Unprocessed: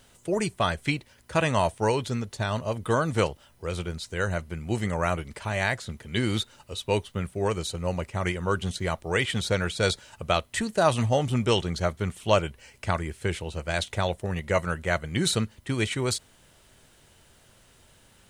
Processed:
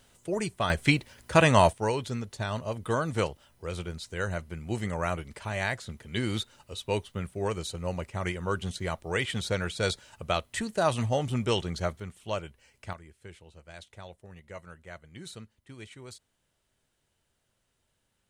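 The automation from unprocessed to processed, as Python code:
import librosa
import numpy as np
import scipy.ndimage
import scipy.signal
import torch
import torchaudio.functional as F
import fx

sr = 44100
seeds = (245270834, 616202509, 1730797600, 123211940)

y = fx.gain(x, sr, db=fx.steps((0.0, -4.0), (0.7, 4.0), (1.73, -4.0), (12.0, -11.0), (12.93, -19.0)))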